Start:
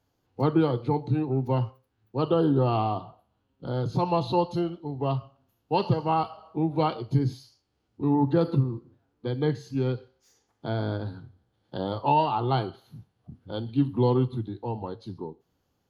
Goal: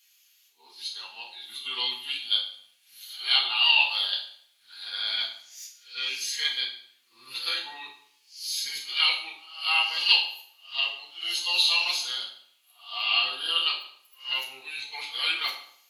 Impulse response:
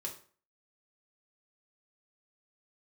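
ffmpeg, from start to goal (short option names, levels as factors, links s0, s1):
-filter_complex "[0:a]areverse,crystalizer=i=9:c=0,highpass=f=2400:t=q:w=2.6[s0];[1:a]atrim=start_sample=2205,asetrate=28224,aresample=44100[s1];[s0][s1]afir=irnorm=-1:irlink=0"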